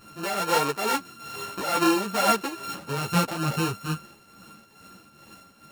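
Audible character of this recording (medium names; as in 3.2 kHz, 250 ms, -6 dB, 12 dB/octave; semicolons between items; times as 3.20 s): a buzz of ramps at a fixed pitch in blocks of 32 samples; tremolo triangle 2.3 Hz, depth 70%; a shimmering, thickened sound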